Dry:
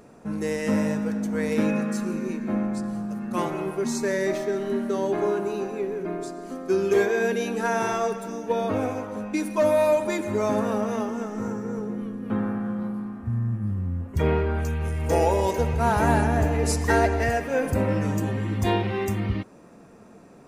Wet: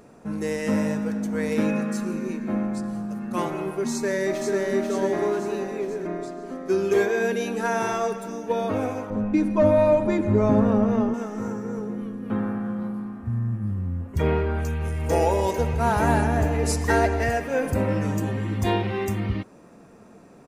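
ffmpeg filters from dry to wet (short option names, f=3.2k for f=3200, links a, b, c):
-filter_complex "[0:a]asplit=2[a][b];[b]afade=t=in:st=3.92:d=0.01,afade=t=out:st=4.57:d=0.01,aecho=0:1:490|980|1470|1960|2450|2940|3430|3920:0.668344|0.367589|0.202174|0.111196|0.0611576|0.0336367|0.0185002|0.0101751[c];[a][c]amix=inputs=2:normalize=0,asettb=1/sr,asplit=3[d][e][f];[d]atrim=end=6.074[g];[e]atrim=start=6.07:end=6.67,asetpts=PTS-STARTPTS,afade=t=in:d=0.004:c=qsin,afade=t=out:st=0.596:d=0.004:c=qsin,aemphasis=mode=reproduction:type=cd[h];[f]atrim=start=6.666[i];[g][h]acrossfade=d=0.004:c1=hsin:c2=qsin[j];[j][i]acrossfade=d=0.004:c1=qsin:c2=hsin,asettb=1/sr,asplit=3[k][l][m];[k]atrim=end=9.104[n];[l]atrim=start=9.1:end=11.14,asetpts=PTS-STARTPTS,afade=t=in:d=0.004:c=qsin,afade=t=out:st=2.036:d=0.004:c=qsin,aemphasis=mode=reproduction:type=riaa[o];[m]atrim=start=11.136[p];[n][o]acrossfade=d=0.004:c1=hsin:c2=qsin[q];[q][p]acrossfade=d=0.004:c1=qsin:c2=hsin"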